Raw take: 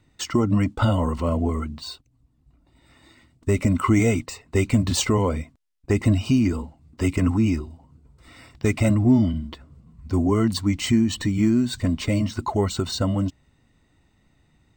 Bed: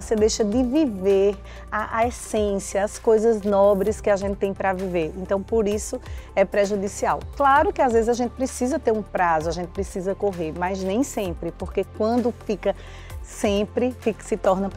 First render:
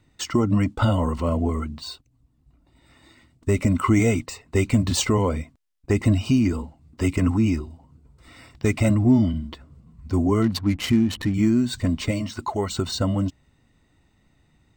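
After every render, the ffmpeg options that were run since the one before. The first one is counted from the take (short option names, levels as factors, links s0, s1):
-filter_complex "[0:a]asettb=1/sr,asplit=3[s0][s1][s2];[s0]atrim=end=10.424[s3];[s1]atrim=start=10.42:end=11.34,asetpts=PTS-STARTPTS,afade=t=in:d=0.004:c=qsin,afade=t=out:st=0.916:d=0.004:c=qsin,adynamicsmooth=sensitivity=7:basefreq=600[s4];[s2]atrim=start=11.336[s5];[s3][s4]acrossfade=d=0.004:c1=hsin:c2=qsin[s6];[s6][s5]acrossfade=d=0.004:c1=qsin:c2=hsin,asettb=1/sr,asplit=3[s7][s8][s9];[s7]atrim=end=12.114[s10];[s8]atrim=start=12.11:end=12.7,asetpts=PTS-STARTPTS,afade=t=in:d=0.004:c=qsin,afade=t=out:st=0.586:d=0.004:c=qsin,lowshelf=f=320:g=-7[s11];[s9]atrim=start=12.696[s12];[s10][s11]acrossfade=d=0.004:c1=hsin:c2=qsin[s13];[s13][s12]acrossfade=d=0.004:c1=qsin:c2=hsin"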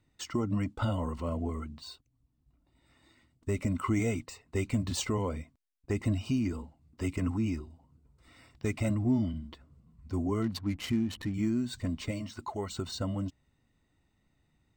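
-af "volume=0.299"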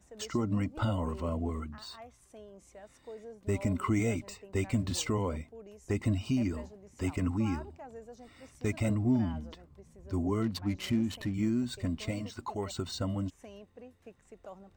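-filter_complex "[1:a]volume=0.0376[s0];[0:a][s0]amix=inputs=2:normalize=0"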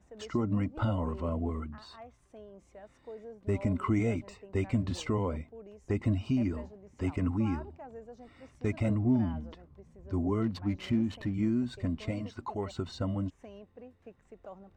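-af "aemphasis=mode=reproduction:type=75fm"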